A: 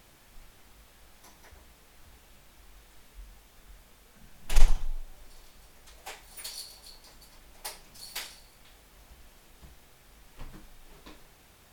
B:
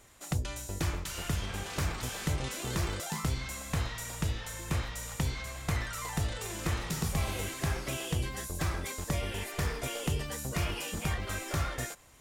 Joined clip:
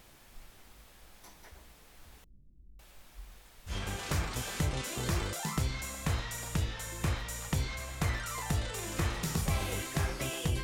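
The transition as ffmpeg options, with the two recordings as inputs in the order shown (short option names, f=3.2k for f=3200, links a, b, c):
-filter_complex "[0:a]asettb=1/sr,asplit=3[a][b][c];[a]atrim=end=2.244[d];[b]atrim=start=2.24:end=3.74,asetpts=PTS-STARTPTS,afade=t=in:d=0.004:c=qsin,afade=t=out:st=1.496:d=0.004:c=qsin,acrossover=split=280[e][f];[f]adelay=550[g];[e][g]amix=inputs=2:normalize=0,atrim=end_sample=66150[h];[c]atrim=start=3.736[i];[d][h]acrossfade=d=0.004:c1=hsin:c2=qsin[j];[j][i]acrossfade=d=0.004:c1=qsin:c2=hsin,apad=whole_dur=10.63,atrim=end=10.63,atrim=end=3.74,asetpts=PTS-STARTPTS[k];[1:a]atrim=start=1.33:end=8.3,asetpts=PTS-STARTPTS[l];[k][l]acrossfade=d=0.08:c1=tri:c2=tri"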